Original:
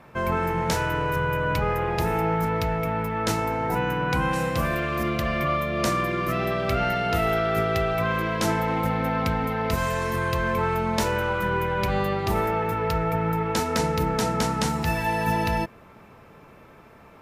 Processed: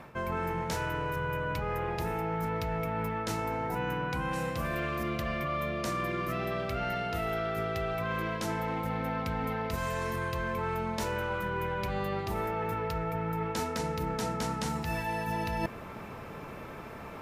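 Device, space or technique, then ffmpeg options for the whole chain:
compression on the reversed sound: -af "areverse,acompressor=threshold=-36dB:ratio=12,areverse,volume=6.5dB"

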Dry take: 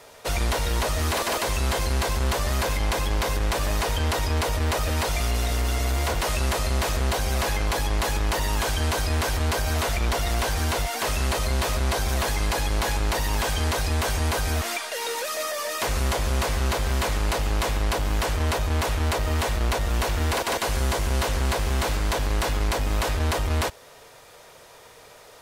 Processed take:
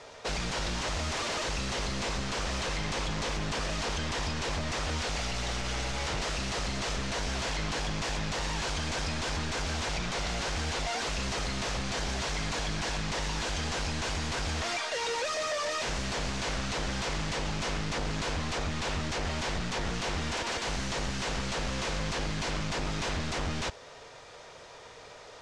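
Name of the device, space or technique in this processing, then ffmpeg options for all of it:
synthesiser wavefolder: -af "aeval=exprs='0.0473*(abs(mod(val(0)/0.0473+3,4)-2)-1)':c=same,lowpass=f=6.9k:w=0.5412,lowpass=f=6.9k:w=1.3066"

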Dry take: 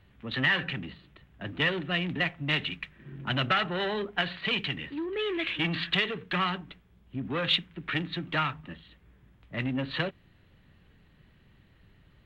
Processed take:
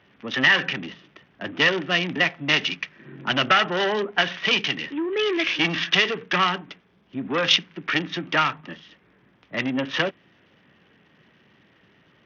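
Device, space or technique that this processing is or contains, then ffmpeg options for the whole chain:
Bluetooth headset: -af "highpass=240,aresample=8000,aresample=44100,volume=8dB" -ar 48000 -c:a sbc -b:a 64k

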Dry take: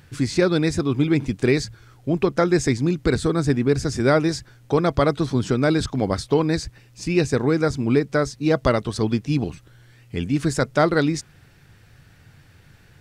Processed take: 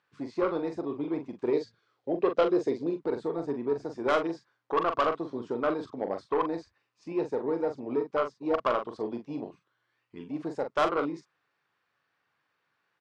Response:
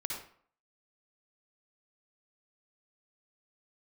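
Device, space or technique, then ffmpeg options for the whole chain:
intercom: -filter_complex "[0:a]afwtdn=0.0794,highpass=440,lowpass=4.2k,equalizer=f=1.1k:t=o:w=0.43:g=11,asoftclip=type=tanh:threshold=-14dB,asplit=2[a][b];[b]adelay=42,volume=-7.5dB[c];[a][c]amix=inputs=2:normalize=0,asettb=1/sr,asplit=3[d][e][f];[d]atrim=end=1.534[g];[e]atrim=start=1.53:end=2.97,asetpts=PTS-STARTPTS,afade=t=in:d=0.004:c=qsin,afade=t=out:st=1.436:d=0.004:c=qsin,equalizer=f=500:t=o:w=1:g=8,equalizer=f=1k:t=o:w=1:g=-6,equalizer=f=4k:t=o:w=1:g=6[h];[f]atrim=start=2.966[i];[g][h]acrossfade=d=0.004:c1=hsin:c2=qsin[j];[j][i]acrossfade=d=0.004:c1=qsin:c2=hsin,volume=-4.5dB"

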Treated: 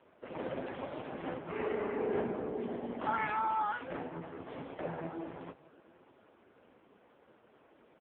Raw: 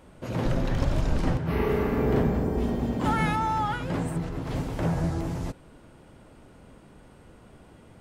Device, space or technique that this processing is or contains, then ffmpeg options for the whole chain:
satellite phone: -af "highpass=340,lowpass=3.3k,aecho=1:1:601:0.0794,volume=-3.5dB" -ar 8000 -c:a libopencore_amrnb -b:a 5150

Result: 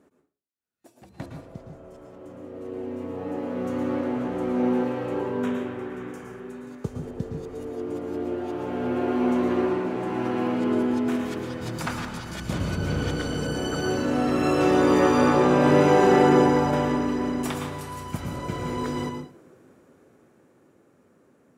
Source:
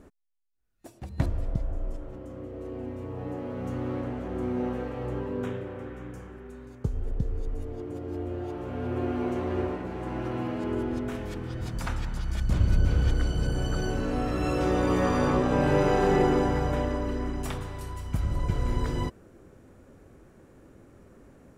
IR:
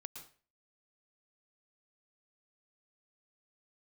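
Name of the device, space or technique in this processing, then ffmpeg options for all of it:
far laptop microphone: -filter_complex "[1:a]atrim=start_sample=2205[a];[0:a][a]afir=irnorm=-1:irlink=0,highpass=180,dynaudnorm=f=300:g=17:m=11dB"

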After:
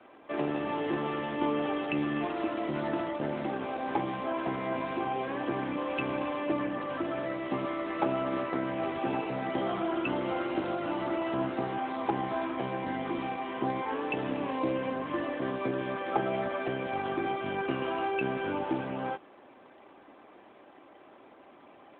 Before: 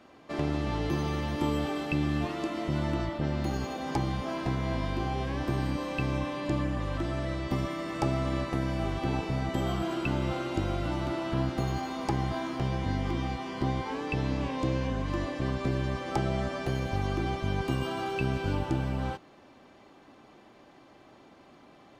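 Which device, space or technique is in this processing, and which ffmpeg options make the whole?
telephone: -af "highpass=310,lowpass=3.3k,volume=3.5dB" -ar 8000 -c:a libopencore_amrnb -b:a 12200

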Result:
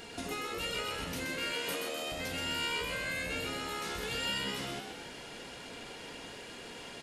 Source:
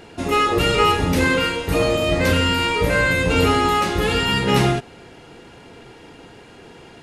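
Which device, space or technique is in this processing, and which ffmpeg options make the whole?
serial compression, peaks first: -filter_complex "[0:a]asettb=1/sr,asplit=3[a][b][c];[a]atrim=end=1.534[d];[b]atrim=start=1.53:end=2.12,asetpts=PTS-STARTPTS,afade=t=in:d=0.004:c=qsin,afade=t=out:st=0.586:d=0.004:c=qsin,highpass=240[e];[c]atrim=start=2.116[f];[d][e]acrossfade=d=0.004:c1=hsin:c2=qsin[g];[g][f]acrossfade=d=0.004:c1=qsin:c2=hsin,acompressor=threshold=-24dB:ratio=6,acompressor=threshold=-33dB:ratio=3,highshelf=f=2.3k:g=11.5,aecho=1:1:4.3:0.32,asplit=8[h][i][j][k][l][m][n][o];[i]adelay=127,afreqshift=75,volume=-5dB[p];[j]adelay=254,afreqshift=150,volume=-10.7dB[q];[k]adelay=381,afreqshift=225,volume=-16.4dB[r];[l]adelay=508,afreqshift=300,volume=-22dB[s];[m]adelay=635,afreqshift=375,volume=-27.7dB[t];[n]adelay=762,afreqshift=450,volume=-33.4dB[u];[o]adelay=889,afreqshift=525,volume=-39.1dB[v];[h][p][q][r][s][t][u][v]amix=inputs=8:normalize=0,volume=-8dB"

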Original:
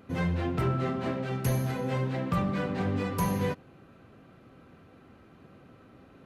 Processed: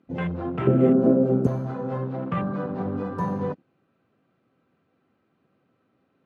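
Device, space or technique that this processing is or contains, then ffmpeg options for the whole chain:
over-cleaned archive recording: -filter_complex "[0:a]highpass=130,lowpass=6k,afwtdn=0.0158,asettb=1/sr,asplit=3[a][b][c];[a]atrim=end=0.674[d];[b]atrim=start=0.67:end=1.47,asetpts=PTS-STARTPTS,afade=t=in:d=0.004:c=qsin,afade=t=out:st=0.796:d=0.004:c=qsin,equalizer=f=125:t=o:w=1:g=4,equalizer=f=250:t=o:w=1:g=11,equalizer=f=500:t=o:w=1:g=12,equalizer=f=1k:t=o:w=1:g=-7,equalizer=f=2k:t=o:w=1:g=-4,equalizer=f=4k:t=o:w=1:g=-6,equalizer=f=8k:t=o:w=1:g=9[e];[c]atrim=start=1.466[f];[d][e]acrossfade=d=0.004:c1=hsin:c2=qsin[g];[g][f]acrossfade=d=0.004:c1=qsin:c2=hsin,volume=2.5dB"

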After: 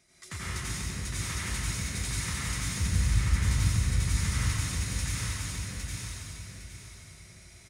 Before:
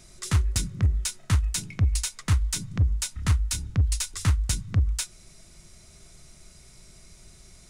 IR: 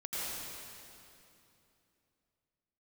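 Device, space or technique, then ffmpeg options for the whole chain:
PA in a hall: -filter_complex "[0:a]bandreject=f=7.6k:w=15,asettb=1/sr,asplit=3[a][b][c];[a]atrim=end=2.604[d];[b]atrim=start=2.6:end=3.36,asetpts=PTS-STARTPTS,afade=t=in:d=0.004:c=qsin,afade=t=out:st=0.756:d=0.004:c=qsin,aemphasis=mode=reproduction:type=bsi[e];[c]atrim=start=3.356[f];[d][e]acrossfade=d=0.004:c1=hsin:c2=qsin[g];[g][f]acrossfade=d=0.004:c1=qsin:c2=hsin,highpass=f=160:p=1,equalizer=f=2k:t=o:w=0.52:g=8,aecho=1:1:92:0.531,aecho=1:1:809|1618|2427|3236:0.708|0.212|0.0637|0.0191[h];[1:a]atrim=start_sample=2205[i];[h][i]afir=irnorm=-1:irlink=0,volume=-8dB"

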